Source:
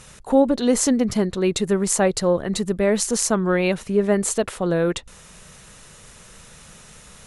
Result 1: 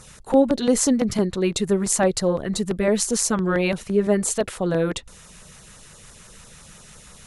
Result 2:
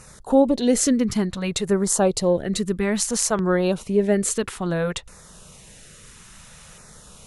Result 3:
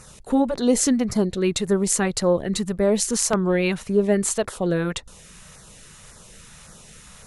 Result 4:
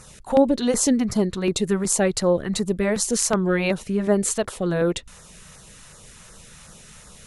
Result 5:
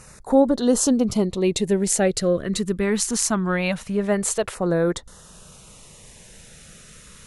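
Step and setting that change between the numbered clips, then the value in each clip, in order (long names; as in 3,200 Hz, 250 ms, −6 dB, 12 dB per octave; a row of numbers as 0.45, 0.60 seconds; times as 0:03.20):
auto-filter notch, speed: 5.9, 0.59, 1.8, 2.7, 0.22 Hertz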